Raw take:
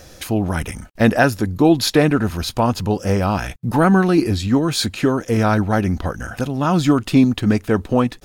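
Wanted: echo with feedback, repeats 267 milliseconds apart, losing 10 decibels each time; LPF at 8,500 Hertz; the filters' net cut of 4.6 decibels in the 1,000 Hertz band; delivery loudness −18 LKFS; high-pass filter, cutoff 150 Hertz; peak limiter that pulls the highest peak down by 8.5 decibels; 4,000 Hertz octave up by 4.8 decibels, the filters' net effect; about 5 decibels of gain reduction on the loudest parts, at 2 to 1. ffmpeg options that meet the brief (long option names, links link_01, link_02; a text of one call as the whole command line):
ffmpeg -i in.wav -af "highpass=150,lowpass=8500,equalizer=frequency=1000:width_type=o:gain=-7,equalizer=frequency=4000:width_type=o:gain=6,acompressor=threshold=-19dB:ratio=2,alimiter=limit=-13dB:level=0:latency=1,aecho=1:1:267|534|801|1068:0.316|0.101|0.0324|0.0104,volume=6dB" out.wav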